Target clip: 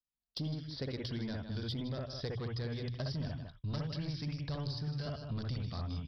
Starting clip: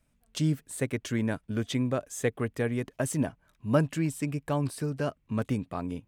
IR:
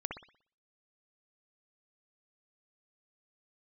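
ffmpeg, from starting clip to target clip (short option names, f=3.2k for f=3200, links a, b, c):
-filter_complex "[0:a]asplit=2[a][b];[b]aecho=0:1:154:0.178[c];[a][c]amix=inputs=2:normalize=0,asubboost=boost=10.5:cutoff=100,bandreject=f=60:t=h:w=6,bandreject=f=120:t=h:w=6,agate=range=-33dB:threshold=-47dB:ratio=16:detection=peak,aresample=11025,asoftclip=type=tanh:threshold=-22.5dB,aresample=44100[d];[1:a]atrim=start_sample=2205,atrim=end_sample=3969[e];[d][e]afir=irnorm=-1:irlink=0,aexciter=amount=6.5:drive=9.7:freq=3.9k,acrossover=split=1100|3200[f][g][h];[f]acompressor=threshold=-37dB:ratio=4[i];[g]acompressor=threshold=-56dB:ratio=4[j];[h]acompressor=threshold=-48dB:ratio=4[k];[i][j][k]amix=inputs=3:normalize=0"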